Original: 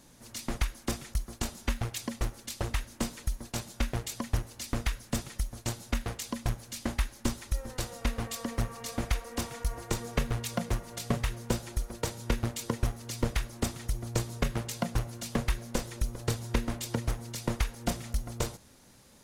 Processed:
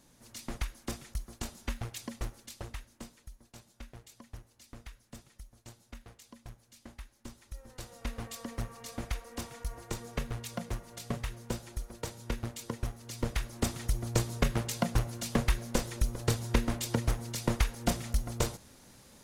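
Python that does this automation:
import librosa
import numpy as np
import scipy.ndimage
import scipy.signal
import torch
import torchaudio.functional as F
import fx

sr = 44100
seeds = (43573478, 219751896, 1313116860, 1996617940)

y = fx.gain(x, sr, db=fx.line((2.29, -5.5), (3.29, -17.5), (7.19, -17.5), (8.17, -6.0), (12.99, -6.0), (13.79, 1.5)))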